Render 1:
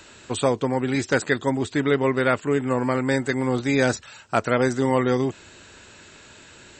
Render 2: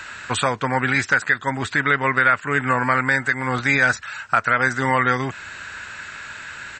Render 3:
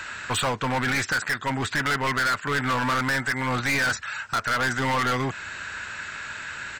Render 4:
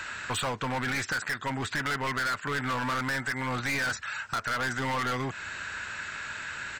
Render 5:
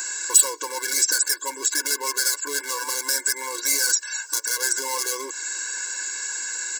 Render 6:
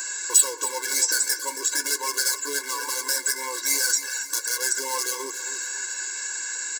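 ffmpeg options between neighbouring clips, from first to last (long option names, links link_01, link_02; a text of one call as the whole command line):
ffmpeg -i in.wav -af "firequalizer=gain_entry='entry(150,0);entry(350,-8);entry(620,0);entry(1500,15);entry(3100,3);entry(9000,-1)':delay=0.05:min_phase=1,alimiter=limit=-10dB:level=0:latency=1:release=408,volume=4dB" out.wav
ffmpeg -i in.wav -af "volume=21dB,asoftclip=hard,volume=-21dB" out.wav
ffmpeg -i in.wav -af "acompressor=threshold=-29dB:ratio=2,volume=-2dB" out.wav
ffmpeg -i in.wav -af "aexciter=amount=11.8:drive=6.4:freq=4800,afftfilt=real='re*eq(mod(floor(b*sr/1024/290),2),1)':imag='im*eq(mod(floor(b*sr/1024/290),2),1)':win_size=1024:overlap=0.75,volume=2.5dB" out.wav
ffmpeg -i in.wav -af "flanger=delay=7.1:depth=8.5:regen=-44:speed=0.42:shape=sinusoidal,aecho=1:1:274|548|822|1096:0.237|0.107|0.048|0.0216,volume=2.5dB" out.wav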